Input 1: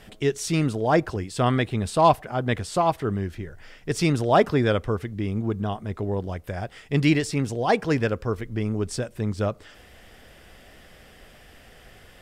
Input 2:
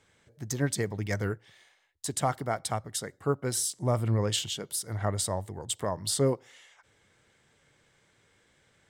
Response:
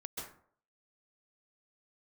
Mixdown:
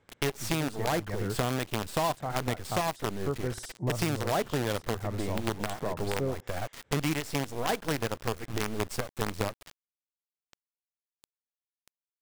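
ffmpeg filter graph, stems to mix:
-filter_complex "[0:a]agate=range=-33dB:threshold=-43dB:ratio=3:detection=peak,acrusher=bits=4:dc=4:mix=0:aa=0.000001,volume=2dB[a];[1:a]lowpass=f=1.2k:p=1,volume=0.5dB[b];[a][b]amix=inputs=2:normalize=0,acompressor=threshold=-26dB:ratio=6"

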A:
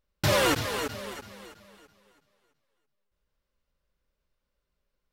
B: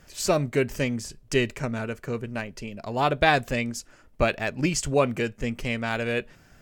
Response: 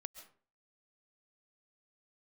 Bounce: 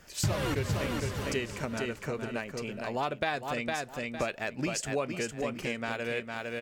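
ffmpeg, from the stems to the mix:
-filter_complex "[0:a]bass=f=250:g=13,treble=f=4k:g=-4,volume=0.5dB,asplit=2[a][b];[b]volume=-5dB[c];[1:a]highpass=f=220:p=1,volume=0.5dB,asplit=2[d][e];[e]volume=-6.5dB[f];[c][f]amix=inputs=2:normalize=0,aecho=0:1:457|914|1371:1|0.17|0.0289[g];[a][d][g]amix=inputs=3:normalize=0,acompressor=threshold=-31dB:ratio=3"

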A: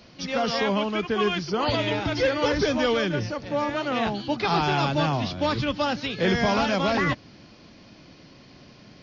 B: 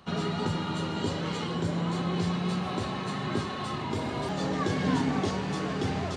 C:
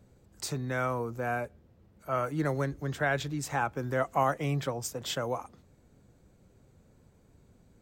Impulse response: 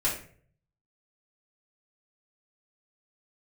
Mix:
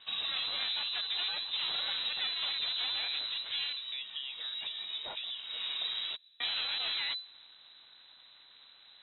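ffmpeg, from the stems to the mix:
-filter_complex "[0:a]highpass=120,aeval=exprs='max(val(0),0)':c=same,volume=-4.5dB,asplit=3[a][b][c];[a]atrim=end=3.73,asetpts=PTS-STARTPTS,afade=t=out:st=3.726:d=0.004:c=hsin[d];[b]atrim=start=3.73:end=6.4,asetpts=PTS-STARTPTS,volume=0[e];[c]atrim=start=6.4,asetpts=PTS-STARTPTS,afade=t=in:d=0.004:c=hsin[f];[d][e][f]concat=n=3:v=0:a=1[g];[1:a]volume=-5dB[h];[2:a]acompressor=threshold=-35dB:ratio=12,volume=-2.5dB,asplit=2[i][j];[j]apad=whole_len=271945[k];[h][k]sidechaincompress=threshold=-47dB:ratio=12:attack=5.5:release=361[l];[g][l][i]amix=inputs=3:normalize=0,lowpass=f=3.4k:t=q:w=0.5098,lowpass=f=3.4k:t=q:w=0.6013,lowpass=f=3.4k:t=q:w=0.9,lowpass=f=3.4k:t=q:w=2.563,afreqshift=-4000,acompressor=threshold=-31dB:ratio=6"

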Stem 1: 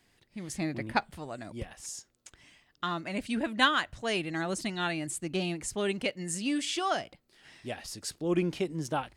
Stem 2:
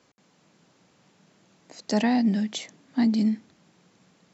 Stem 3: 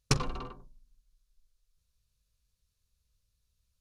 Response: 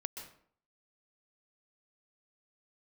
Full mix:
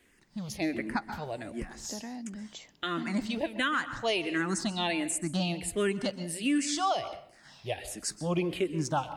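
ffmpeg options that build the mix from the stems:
-filter_complex "[0:a]asplit=2[a][b];[b]afreqshift=-1.4[c];[a][c]amix=inputs=2:normalize=1,volume=1.5dB,asplit=2[d][e];[e]volume=-3.5dB[f];[1:a]acompressor=threshold=-27dB:ratio=4,volume=-11.5dB[g];[3:a]atrim=start_sample=2205[h];[f][h]afir=irnorm=-1:irlink=0[i];[d][g][i]amix=inputs=3:normalize=0,alimiter=limit=-19dB:level=0:latency=1:release=169"

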